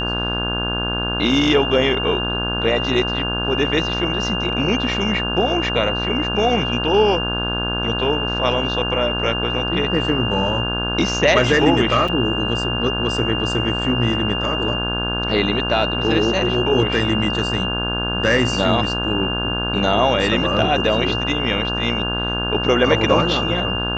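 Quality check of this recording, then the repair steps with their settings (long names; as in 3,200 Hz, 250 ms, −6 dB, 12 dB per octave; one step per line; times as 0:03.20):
mains buzz 60 Hz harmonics 28 −25 dBFS
whistle 2,800 Hz −23 dBFS
0:12.08: drop-out 4.7 ms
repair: hum removal 60 Hz, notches 28
notch filter 2,800 Hz, Q 30
repair the gap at 0:12.08, 4.7 ms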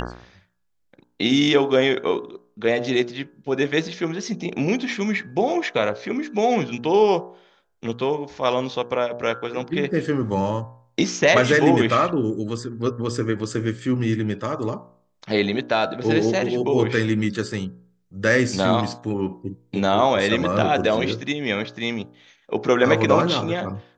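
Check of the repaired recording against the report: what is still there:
none of them is left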